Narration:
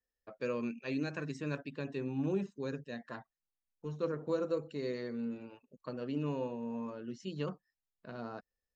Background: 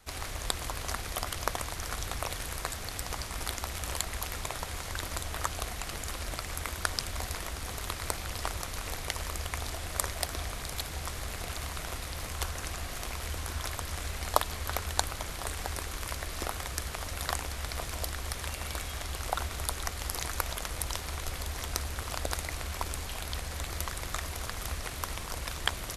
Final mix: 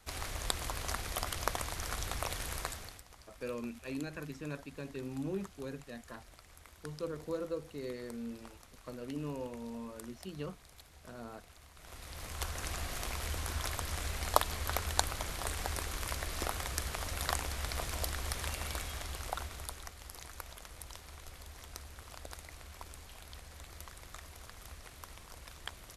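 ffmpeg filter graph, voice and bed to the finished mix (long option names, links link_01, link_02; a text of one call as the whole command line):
ffmpeg -i stem1.wav -i stem2.wav -filter_complex "[0:a]adelay=3000,volume=-4dB[link_01];[1:a]volume=16.5dB,afade=type=out:start_time=2.58:duration=0.45:silence=0.125893,afade=type=in:start_time=11.75:duration=0.99:silence=0.112202,afade=type=out:start_time=18.49:duration=1.46:silence=0.237137[link_02];[link_01][link_02]amix=inputs=2:normalize=0" out.wav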